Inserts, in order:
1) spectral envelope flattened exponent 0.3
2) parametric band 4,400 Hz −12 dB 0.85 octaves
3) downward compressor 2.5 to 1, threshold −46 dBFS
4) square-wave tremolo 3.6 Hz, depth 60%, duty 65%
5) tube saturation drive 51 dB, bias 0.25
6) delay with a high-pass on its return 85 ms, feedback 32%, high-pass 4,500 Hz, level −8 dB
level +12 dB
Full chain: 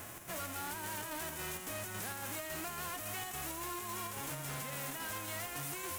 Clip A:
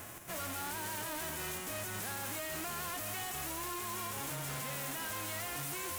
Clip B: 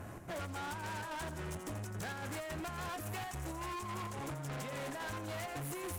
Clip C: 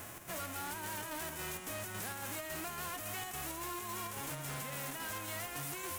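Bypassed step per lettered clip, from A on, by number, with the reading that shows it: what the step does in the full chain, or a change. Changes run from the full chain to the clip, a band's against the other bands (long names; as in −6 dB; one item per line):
3, average gain reduction 10.0 dB
1, 8 kHz band −9.0 dB
6, echo-to-direct ratio −23.0 dB to none audible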